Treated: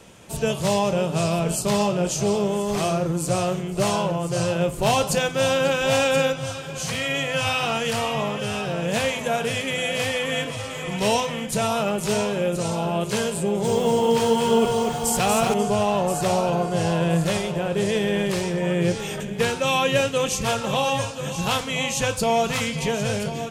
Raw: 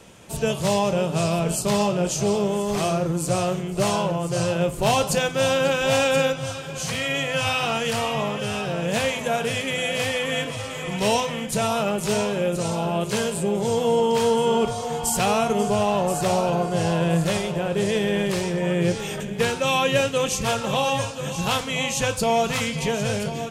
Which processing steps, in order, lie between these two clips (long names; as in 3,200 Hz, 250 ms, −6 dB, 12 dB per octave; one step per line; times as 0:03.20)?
0:13.40–0:15.54: feedback echo at a low word length 238 ms, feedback 35%, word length 7 bits, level −4 dB